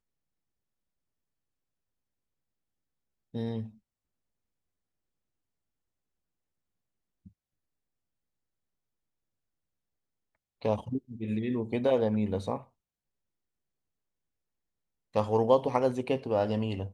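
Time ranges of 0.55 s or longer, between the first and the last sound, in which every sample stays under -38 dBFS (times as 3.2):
3.66–10.62
12.61–15.15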